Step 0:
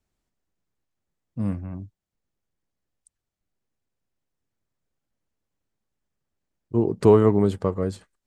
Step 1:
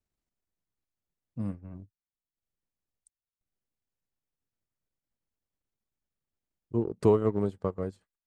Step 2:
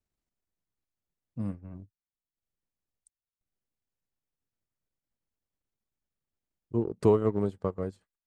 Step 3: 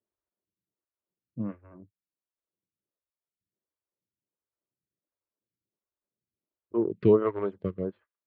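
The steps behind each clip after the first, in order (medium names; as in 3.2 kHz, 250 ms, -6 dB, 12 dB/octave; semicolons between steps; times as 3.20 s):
transient shaper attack +3 dB, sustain -11 dB; trim -8.5 dB
no audible change
cabinet simulation 140–3400 Hz, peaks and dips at 150 Hz -7 dB, 250 Hz -8 dB, 470 Hz -4 dB, 770 Hz -10 dB; level-controlled noise filter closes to 810 Hz, open at -29 dBFS; lamp-driven phase shifter 1.4 Hz; trim +8 dB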